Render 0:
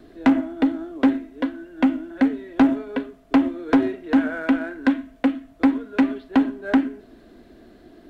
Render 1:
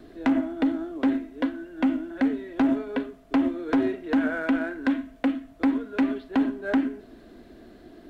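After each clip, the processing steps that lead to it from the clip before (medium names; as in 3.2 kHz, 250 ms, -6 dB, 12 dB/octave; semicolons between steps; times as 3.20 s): peak limiter -15.5 dBFS, peak gain reduction 8.5 dB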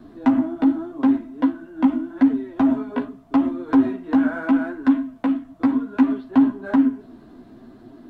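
chorus voices 2, 0.83 Hz, delay 12 ms, depth 4.5 ms; ten-band graphic EQ 125 Hz +9 dB, 250 Hz +8 dB, 500 Hz -3 dB, 1 kHz +11 dB, 2 kHz -3 dB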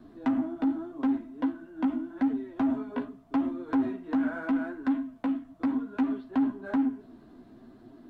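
saturation -12.5 dBFS, distortion -15 dB; trim -7 dB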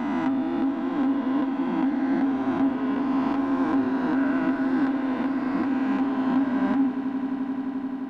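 reverse spectral sustain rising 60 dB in 2.81 s; echo with a slow build-up 87 ms, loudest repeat 8, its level -17 dB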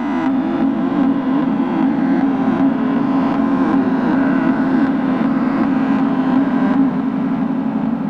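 ever faster or slower copies 296 ms, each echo -3 st, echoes 3, each echo -6 dB; trim +7.5 dB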